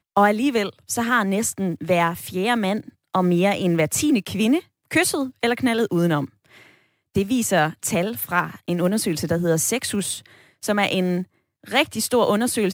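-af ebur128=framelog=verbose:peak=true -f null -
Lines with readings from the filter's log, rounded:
Integrated loudness:
  I:         -21.6 LUFS
  Threshold: -32.0 LUFS
Loudness range:
  LRA:         2.1 LU
  Threshold: -42.1 LUFS
  LRA low:   -23.2 LUFS
  LRA high:  -21.1 LUFS
True peak:
  Peak:       -4.2 dBFS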